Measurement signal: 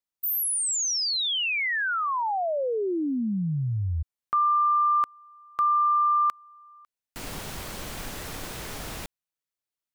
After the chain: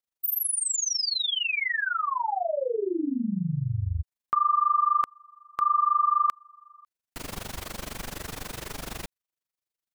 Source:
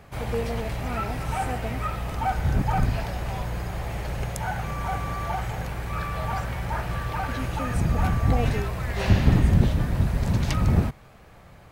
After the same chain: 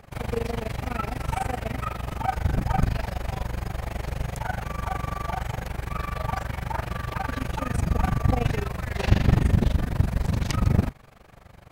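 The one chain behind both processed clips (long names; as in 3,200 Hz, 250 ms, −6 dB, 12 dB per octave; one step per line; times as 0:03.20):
amplitude modulation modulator 24 Hz, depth 85%
level +3 dB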